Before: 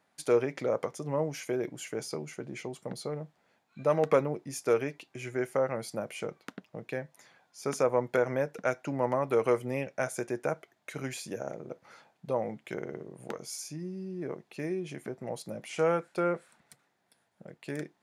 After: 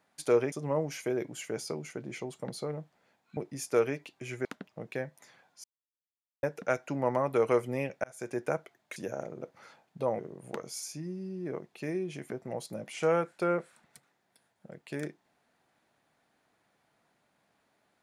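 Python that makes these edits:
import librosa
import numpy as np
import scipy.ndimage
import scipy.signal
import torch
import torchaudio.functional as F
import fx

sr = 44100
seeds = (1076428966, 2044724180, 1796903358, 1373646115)

y = fx.edit(x, sr, fx.cut(start_s=0.52, length_s=0.43),
    fx.cut(start_s=3.8, length_s=0.51),
    fx.cut(start_s=5.39, length_s=1.03),
    fx.silence(start_s=7.61, length_s=0.79),
    fx.fade_in_span(start_s=10.01, length_s=0.34),
    fx.cut(start_s=10.93, length_s=0.31),
    fx.cut(start_s=12.47, length_s=0.48), tone=tone)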